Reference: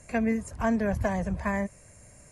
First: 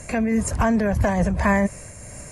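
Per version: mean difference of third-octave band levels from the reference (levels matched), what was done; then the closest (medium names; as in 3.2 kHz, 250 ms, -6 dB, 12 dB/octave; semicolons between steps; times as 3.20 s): 4.0 dB: loudness maximiser +25 dB; random flutter of the level, depth 55%; trim -8.5 dB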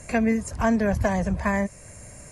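2.0 dB: dynamic bell 5.2 kHz, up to +4 dB, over -54 dBFS, Q 1.2; in parallel at +1 dB: compression, threshold -38 dBFS, peak gain reduction 15.5 dB; on the sum: trim +2.5 dB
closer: second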